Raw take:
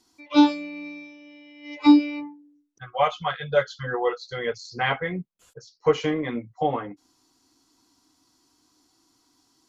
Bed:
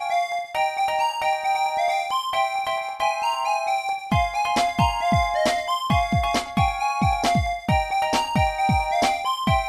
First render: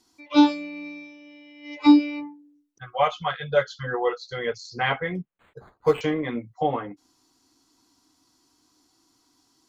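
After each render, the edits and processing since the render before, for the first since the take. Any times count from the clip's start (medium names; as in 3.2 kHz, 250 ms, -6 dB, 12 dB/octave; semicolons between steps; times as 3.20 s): 5.15–6.01 s: decimation joined by straight lines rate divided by 8×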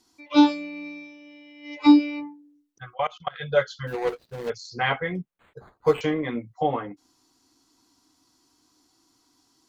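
2.94–3.36 s: level held to a coarse grid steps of 23 dB; 3.87–4.50 s: median filter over 41 samples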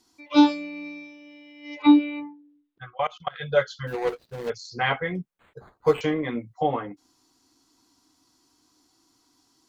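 1.82–3.00 s: elliptic low-pass 3.8 kHz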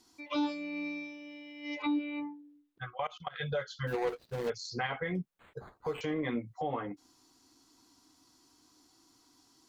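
compression 2:1, threshold -32 dBFS, peak gain reduction 12 dB; peak limiter -24.5 dBFS, peak gain reduction 8.5 dB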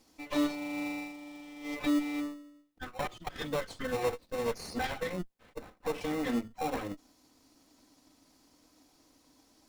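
comb filter that takes the minimum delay 3.9 ms; in parallel at -4 dB: sample-rate reducer 1.6 kHz, jitter 0%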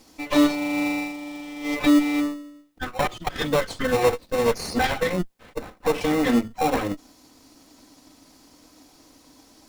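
trim +11.5 dB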